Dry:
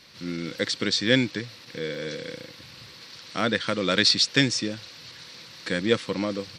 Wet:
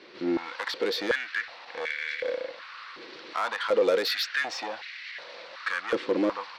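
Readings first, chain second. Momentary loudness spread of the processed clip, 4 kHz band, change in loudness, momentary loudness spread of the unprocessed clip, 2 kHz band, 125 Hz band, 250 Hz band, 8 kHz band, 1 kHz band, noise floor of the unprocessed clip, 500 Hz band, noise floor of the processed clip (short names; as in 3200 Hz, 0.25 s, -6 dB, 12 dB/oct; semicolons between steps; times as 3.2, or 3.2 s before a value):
16 LU, -9.0 dB, -4.5 dB, 22 LU, -1.0 dB, under -15 dB, -6.0 dB, -12.0 dB, +2.0 dB, -47 dBFS, +1.0 dB, -46 dBFS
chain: LPF 2600 Hz 12 dB/oct; limiter -18 dBFS, peak gain reduction 10.5 dB; soft clip -28.5 dBFS, distortion -10 dB; stepped high-pass 2.7 Hz 360–2000 Hz; gain +4 dB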